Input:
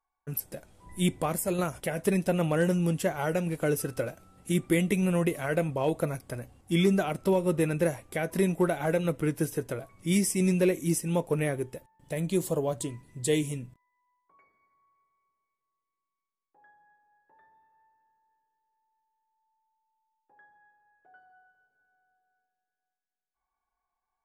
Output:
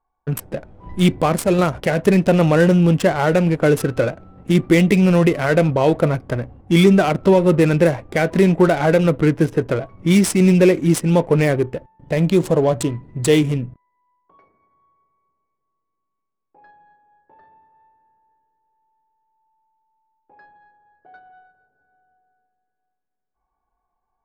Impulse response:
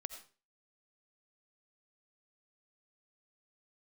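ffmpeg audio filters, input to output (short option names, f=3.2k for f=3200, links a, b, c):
-filter_complex "[0:a]asplit=2[a][b];[b]alimiter=level_in=1dB:limit=-24dB:level=0:latency=1:release=29,volume=-1dB,volume=-1dB[c];[a][c]amix=inputs=2:normalize=0,adynamicsmooth=sensitivity=7.5:basefreq=960,volume=9dB"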